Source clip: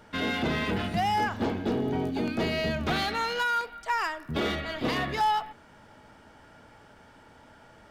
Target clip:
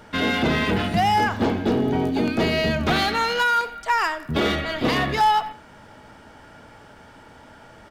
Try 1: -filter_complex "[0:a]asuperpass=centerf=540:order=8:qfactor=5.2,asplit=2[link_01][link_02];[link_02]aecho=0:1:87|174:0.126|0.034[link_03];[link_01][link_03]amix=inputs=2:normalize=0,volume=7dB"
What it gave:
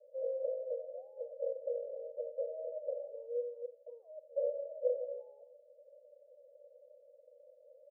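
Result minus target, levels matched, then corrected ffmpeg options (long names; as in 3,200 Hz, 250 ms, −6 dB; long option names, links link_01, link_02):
500 Hz band +8.5 dB
-filter_complex "[0:a]asplit=2[link_01][link_02];[link_02]aecho=0:1:87|174:0.126|0.034[link_03];[link_01][link_03]amix=inputs=2:normalize=0,volume=7dB"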